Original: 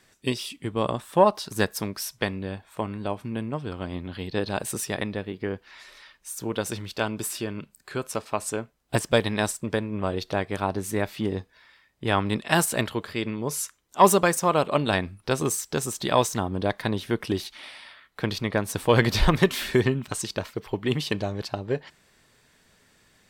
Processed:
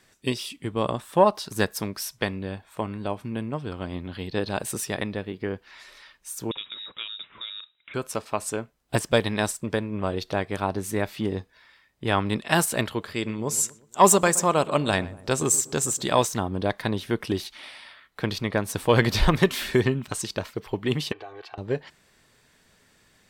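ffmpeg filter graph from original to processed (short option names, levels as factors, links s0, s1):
-filter_complex "[0:a]asettb=1/sr,asplit=3[s0][s1][s2];[s0]atrim=end=6.514[s3];[s1]atrim=start=6.51:end=7.94,asetpts=PTS-STARTPTS,afade=t=in:d=0.004:c=qsin,afade=t=out:st=1.426:d=0.004:c=qsin,acompressor=threshold=0.0158:ratio=2:attack=3.2:release=140:knee=1:detection=peak,lowpass=f=3300:t=q:w=0.5098,lowpass=f=3300:t=q:w=0.6013,lowpass=f=3300:t=q:w=0.9,lowpass=f=3300:t=q:w=2.563,afreqshift=-3900,equalizer=f=740:t=o:w=0.78:g=-5.5[s4];[s2]atrim=start=7.936[s5];[s3][s4]acrossfade=d=0.004:c1=hsin:c2=qsin[s6];[s6][s5]acrossfade=d=0.004:c1=qsin:c2=hsin,asettb=1/sr,asplit=3[s7][s8][s9];[s7]atrim=end=13.144[s10];[s8]atrim=start=13.14:end=16.25,asetpts=PTS-STARTPTS,afade=t=in:d=0.004:c=qsin,afade=t=out:st=3.106:d=0.004:c=qsin,equalizer=f=7500:t=o:w=0.36:g=11.5,asplit=2[s11][s12];[s12]adelay=121,lowpass=f=1200:p=1,volume=0.15,asplit=2[s13][s14];[s14]adelay=121,lowpass=f=1200:p=1,volume=0.5,asplit=2[s15][s16];[s16]adelay=121,lowpass=f=1200:p=1,volume=0.5,asplit=2[s17][s18];[s18]adelay=121,lowpass=f=1200:p=1,volume=0.5[s19];[s11][s13][s15][s17][s19]amix=inputs=5:normalize=0,atrim=end_sample=137151[s20];[s9]atrim=start=16.246[s21];[s10][s20]acrossfade=d=0.004:c1=hsin:c2=qsin[s22];[s22][s21]acrossfade=d=0.004:c1=qsin:c2=hsin,asettb=1/sr,asplit=3[s23][s24][s25];[s23]atrim=end=21.124[s26];[s24]atrim=start=21.12:end=21.58,asetpts=PTS-STARTPTS,afade=t=in:d=0.004:c=qsin,afade=t=out:st=0.456:d=0.004:c=qsin,acrossover=split=450 3200:gain=0.0794 1 0.0891[s27][s28][s29];[s27][s28][s29]amix=inputs=3:normalize=0,aecho=1:1:2.6:0.89,atrim=end_sample=20286,acompressor=threshold=0.0126:ratio=3:attack=3.2:release=140:knee=1:detection=peak[s30];[s25]atrim=start=21.576[s31];[s26][s30]acrossfade=d=0.004:c1=hsin:c2=qsin[s32];[s32][s31]acrossfade=d=0.004:c1=qsin:c2=hsin"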